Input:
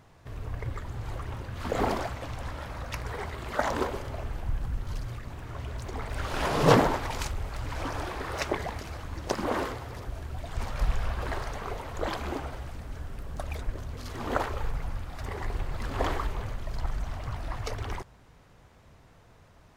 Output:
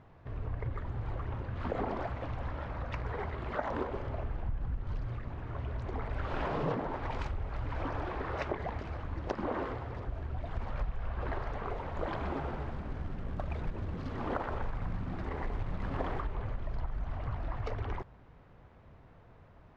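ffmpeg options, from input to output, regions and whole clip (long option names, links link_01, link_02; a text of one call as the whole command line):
ffmpeg -i in.wav -filter_complex "[0:a]asettb=1/sr,asplit=3[link_01][link_02][link_03];[link_01]atrim=end=11.704[link_04];[link_02]atrim=start=11.7:end=16.21,asetpts=PTS-STARTPTS,afade=type=in:duration=0.004:curve=qsin,afade=type=out:start_time=4.506:duration=0.004:curve=qsin,bandreject=frequency=50:width_type=h:width=6,bandreject=frequency=100:width_type=h:width=6,bandreject=frequency=150:width_type=h:width=6,bandreject=frequency=200:width_type=h:width=6,bandreject=frequency=250:width_type=h:width=6,bandreject=frequency=300:width_type=h:width=6,bandreject=frequency=350:width_type=h:width=6,bandreject=frequency=400:width_type=h:width=6,bandreject=frequency=450:width_type=h:width=6,asplit=9[link_05][link_06][link_07][link_08][link_09][link_10][link_11][link_12][link_13];[link_06]adelay=123,afreqshift=78,volume=-9.5dB[link_14];[link_07]adelay=246,afreqshift=156,volume=-13.5dB[link_15];[link_08]adelay=369,afreqshift=234,volume=-17.5dB[link_16];[link_09]adelay=492,afreqshift=312,volume=-21.5dB[link_17];[link_10]adelay=615,afreqshift=390,volume=-25.6dB[link_18];[link_11]adelay=738,afreqshift=468,volume=-29.6dB[link_19];[link_12]adelay=861,afreqshift=546,volume=-33.6dB[link_20];[link_13]adelay=984,afreqshift=624,volume=-37.6dB[link_21];[link_05][link_14][link_15][link_16][link_17][link_18][link_19][link_20][link_21]amix=inputs=9:normalize=0,atrim=end_sample=198891,acrusher=bits=4:mode=log:mix=0:aa=0.000001[link_22];[link_03]atrim=start=16.206[link_23];[link_04][link_22]acrossfade=duration=0.004:curve1=hsin:curve2=qsin[link_24];[link_24][link_23]acrossfade=duration=0.004:curve1=qsin:curve2=hsin,lowpass=3300,highshelf=frequency=2200:gain=-8.5,acompressor=threshold=-30dB:ratio=8" out.wav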